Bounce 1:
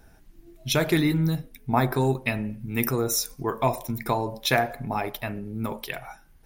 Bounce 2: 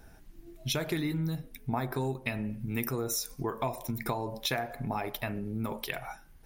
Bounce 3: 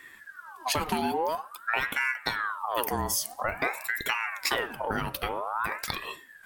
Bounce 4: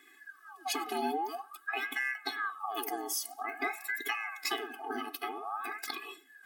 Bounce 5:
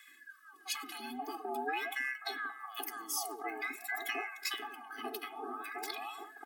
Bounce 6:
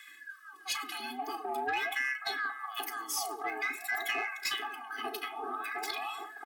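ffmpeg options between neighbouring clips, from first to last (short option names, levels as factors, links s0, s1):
-af "acompressor=threshold=0.0316:ratio=4"
-af "equalizer=f=10000:t=o:w=0.22:g=6,aeval=exprs='val(0)*sin(2*PI*1200*n/s+1200*0.55/0.49*sin(2*PI*0.49*n/s))':c=same,volume=2"
-af "afftfilt=real='re*eq(mod(floor(b*sr/1024/220),2),1)':imag='im*eq(mod(floor(b*sr/1024/220),2),1)':win_size=1024:overlap=0.75,volume=0.75"
-filter_complex "[0:a]areverse,acompressor=mode=upward:threshold=0.00562:ratio=2.5,areverse,acrossover=split=270|1100[s0][s1][s2];[s0]adelay=80[s3];[s1]adelay=530[s4];[s3][s4][s2]amix=inputs=3:normalize=0,volume=0.794"
-filter_complex "[0:a]asplit=2[s0][s1];[s1]highpass=f=720:p=1,volume=3.55,asoftclip=type=tanh:threshold=0.0794[s2];[s0][s2]amix=inputs=2:normalize=0,lowpass=f=7000:p=1,volume=0.501,asplit=2[s3][s4];[s4]adelay=35,volume=0.2[s5];[s3][s5]amix=inputs=2:normalize=0"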